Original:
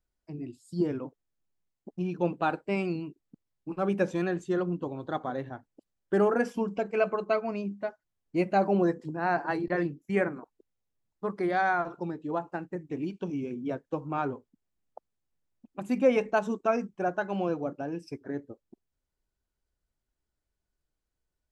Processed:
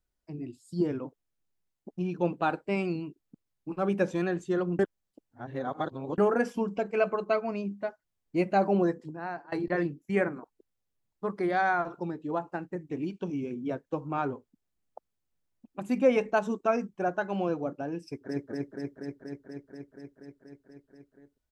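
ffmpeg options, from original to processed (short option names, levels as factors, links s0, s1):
-filter_complex "[0:a]asplit=2[s0][s1];[s1]afade=t=in:st=18.05:d=0.01,afade=t=out:st=18.49:d=0.01,aecho=0:1:240|480|720|960|1200|1440|1680|1920|2160|2400|2640|2880:0.891251|0.713001|0.570401|0.45632|0.365056|0.292045|0.233636|0.186909|0.149527|0.119622|0.0956973|0.0765579[s2];[s0][s2]amix=inputs=2:normalize=0,asplit=4[s3][s4][s5][s6];[s3]atrim=end=4.792[s7];[s4]atrim=start=4.788:end=6.182,asetpts=PTS-STARTPTS,areverse[s8];[s5]atrim=start=6.178:end=9.52,asetpts=PTS-STARTPTS,afade=t=out:st=2.602:d=0.74:silence=0.0707946[s9];[s6]atrim=start=9.52,asetpts=PTS-STARTPTS,afade=t=in:d=0.004:c=hsin:silence=0.0707946[s10];[s7][s8]acrossfade=d=0.004:c1=hsin:c2=hsin[s11];[s9][s10]concat=n=2:v=0:a=1[s12];[s11][s12]acrossfade=d=0.004:c1=hsin:c2=hsin"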